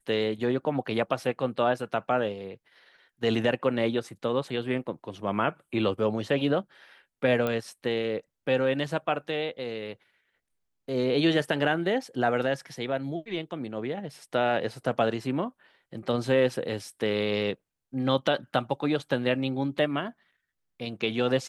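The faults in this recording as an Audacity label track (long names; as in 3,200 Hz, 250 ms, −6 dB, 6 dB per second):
7.470000	7.470000	click −16 dBFS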